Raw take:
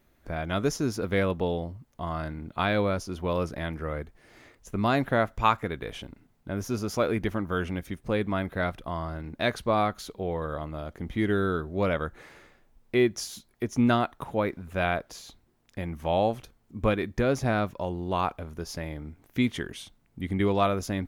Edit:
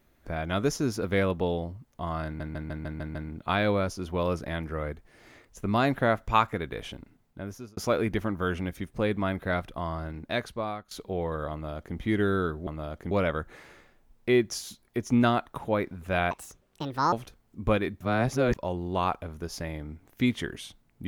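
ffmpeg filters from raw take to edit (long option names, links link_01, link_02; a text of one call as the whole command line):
ffmpeg -i in.wav -filter_complex "[0:a]asplit=15[link_01][link_02][link_03][link_04][link_05][link_06][link_07][link_08][link_09][link_10][link_11][link_12][link_13][link_14][link_15];[link_01]atrim=end=2.402[link_16];[link_02]atrim=start=2.248:end=2.402[link_17];[link_03]atrim=start=2.248:end=2.402[link_18];[link_04]atrim=start=2.248:end=2.402[link_19];[link_05]atrim=start=2.248:end=2.402[link_20];[link_06]atrim=start=2.248:end=2.402[link_21];[link_07]atrim=start=2.248:end=6.87,asetpts=PTS-STARTPTS,afade=type=out:start_time=3.712:duration=0.91:curve=qsin[link_22];[link_08]atrim=start=6.87:end=10.01,asetpts=PTS-STARTPTS,afade=type=in:duration=0.004:curve=hsin,afade=type=out:start_time=2.31:duration=0.83:silence=0.11885[link_23];[link_09]atrim=start=10.01:end=11.772,asetpts=PTS-STARTPTS,afade=type=in:duration=0.004:curve=hsin:silence=0.11885[link_24];[link_10]atrim=start=10.618:end=11.062[link_25];[link_11]atrim=start=11.768:end=14.974[link_26];[link_12]atrim=start=14.97:end=16.29,asetpts=PTS-STARTPTS,asetrate=71442,aresample=44100,atrim=end_sample=35933,asetpts=PTS-STARTPTS[link_27];[link_13]atrim=start=16.286:end=17.172[link_28];[link_14]atrim=start=17.168:end=17.712,asetpts=PTS-STARTPTS,areverse[link_29];[link_15]atrim=start=17.708[link_30];[link_16][link_17]acrossfade=duration=0.004:curve1=hsin:curve2=hsin[link_31];[link_31][link_18]acrossfade=duration=0.004:curve1=hsin:curve2=hsin[link_32];[link_32][link_19]acrossfade=duration=0.004:curve1=hsin:curve2=hsin[link_33];[link_33][link_20]acrossfade=duration=0.004:curve1=hsin:curve2=hsin[link_34];[link_34][link_21]acrossfade=duration=0.004:curve1=hsin:curve2=hsin[link_35];[link_22][link_23][link_24]concat=n=3:v=0:a=1[link_36];[link_35][link_36]acrossfade=duration=0.004:curve1=hsin:curve2=hsin[link_37];[link_37][link_25]acrossfade=duration=0.004:curve1=hsin:curve2=hsin[link_38];[link_38][link_26]acrossfade=duration=0.004:curve1=hsin:curve2=hsin[link_39];[link_39][link_27]acrossfade=duration=0.004:curve1=hsin:curve2=hsin[link_40];[link_40][link_28]acrossfade=duration=0.004:curve1=hsin:curve2=hsin[link_41];[link_41][link_29]acrossfade=duration=0.004:curve1=hsin:curve2=hsin[link_42];[link_42][link_30]acrossfade=duration=0.004:curve1=hsin:curve2=hsin" out.wav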